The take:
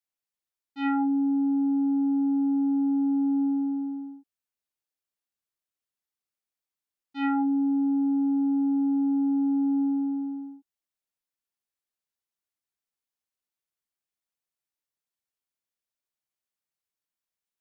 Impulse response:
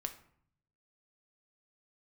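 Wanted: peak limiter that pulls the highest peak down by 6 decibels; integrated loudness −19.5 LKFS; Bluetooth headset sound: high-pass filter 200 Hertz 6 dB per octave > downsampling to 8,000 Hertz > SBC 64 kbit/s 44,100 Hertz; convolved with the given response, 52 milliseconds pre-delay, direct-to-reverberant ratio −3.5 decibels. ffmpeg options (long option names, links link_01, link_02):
-filter_complex "[0:a]alimiter=level_in=1dB:limit=-24dB:level=0:latency=1,volume=-1dB,asplit=2[link_01][link_02];[1:a]atrim=start_sample=2205,adelay=52[link_03];[link_02][link_03]afir=irnorm=-1:irlink=0,volume=4.5dB[link_04];[link_01][link_04]amix=inputs=2:normalize=0,highpass=frequency=200:poles=1,aresample=8000,aresample=44100,volume=13dB" -ar 44100 -c:a sbc -b:a 64k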